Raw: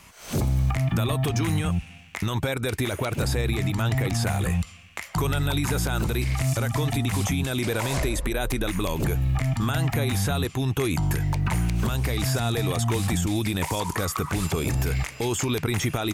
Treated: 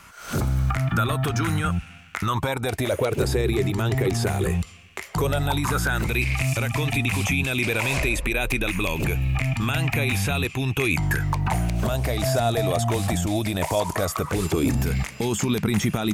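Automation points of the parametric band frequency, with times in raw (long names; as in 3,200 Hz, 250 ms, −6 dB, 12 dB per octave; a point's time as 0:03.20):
parametric band +14.5 dB 0.37 octaves
0:02.18 1,400 Hz
0:03.20 390 Hz
0:05.08 390 Hz
0:06.15 2,500 Hz
0:10.93 2,500 Hz
0:11.60 640 Hz
0:14.16 640 Hz
0:14.84 200 Hz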